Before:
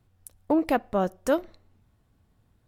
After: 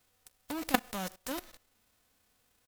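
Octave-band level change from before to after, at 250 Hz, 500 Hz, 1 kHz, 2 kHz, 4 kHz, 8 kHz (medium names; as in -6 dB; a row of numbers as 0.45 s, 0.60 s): -11.0 dB, -15.5 dB, -7.5 dB, -1.5 dB, +4.0 dB, +2.5 dB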